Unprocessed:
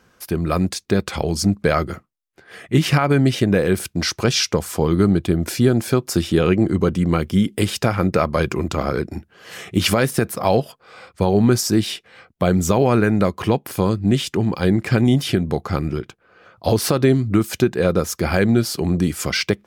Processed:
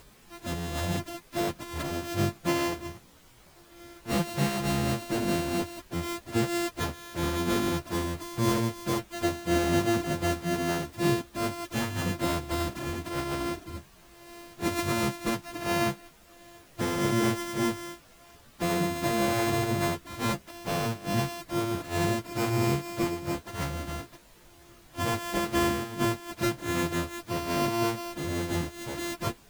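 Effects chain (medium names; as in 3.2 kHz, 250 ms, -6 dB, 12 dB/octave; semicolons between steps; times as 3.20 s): sorted samples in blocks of 128 samples; added noise pink -45 dBFS; plain phase-vocoder stretch 1.5×; trim -8 dB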